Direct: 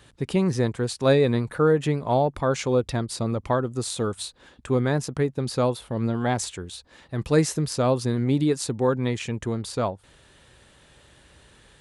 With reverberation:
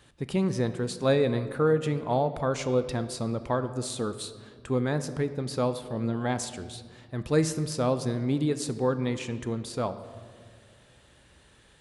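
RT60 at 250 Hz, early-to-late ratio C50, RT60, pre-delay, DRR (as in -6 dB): 2.3 s, 12.5 dB, 2.0 s, 4 ms, 10.5 dB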